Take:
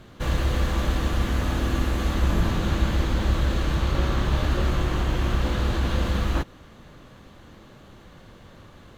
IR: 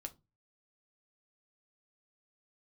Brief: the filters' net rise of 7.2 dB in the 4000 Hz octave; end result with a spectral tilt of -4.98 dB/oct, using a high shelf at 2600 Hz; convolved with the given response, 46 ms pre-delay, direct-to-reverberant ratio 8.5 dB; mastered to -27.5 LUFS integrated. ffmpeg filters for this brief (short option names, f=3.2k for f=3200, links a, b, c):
-filter_complex "[0:a]highshelf=f=2.6k:g=3,equalizer=f=4k:t=o:g=6.5,asplit=2[a][b];[1:a]atrim=start_sample=2205,adelay=46[c];[b][c]afir=irnorm=-1:irlink=0,volume=-4.5dB[d];[a][d]amix=inputs=2:normalize=0,volume=-3.5dB"